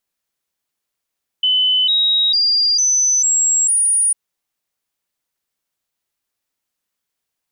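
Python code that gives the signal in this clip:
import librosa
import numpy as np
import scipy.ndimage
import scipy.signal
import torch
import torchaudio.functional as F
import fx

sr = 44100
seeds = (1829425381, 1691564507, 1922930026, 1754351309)

y = fx.stepped_sweep(sr, from_hz=3020.0, direction='up', per_octave=3, tones=6, dwell_s=0.45, gap_s=0.0, level_db=-12.0)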